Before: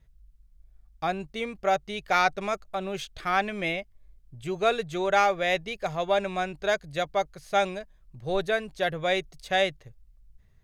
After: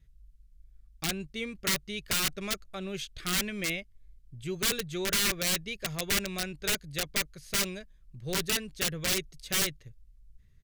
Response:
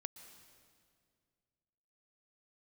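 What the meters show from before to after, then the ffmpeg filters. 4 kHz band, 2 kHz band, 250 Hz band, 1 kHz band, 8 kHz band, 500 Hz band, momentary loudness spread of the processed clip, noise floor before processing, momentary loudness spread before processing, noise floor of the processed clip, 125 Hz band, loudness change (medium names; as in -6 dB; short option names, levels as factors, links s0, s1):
+4.0 dB, -4.0 dB, -1.0 dB, -15.0 dB, +14.5 dB, -11.0 dB, 9 LU, -59 dBFS, 9 LU, -60 dBFS, +0.5 dB, -2.5 dB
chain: -af "aresample=32000,aresample=44100,aeval=exprs='(mod(9.44*val(0)+1,2)-1)/9.44':c=same,equalizer=f=780:t=o:w=1.3:g=-14.5"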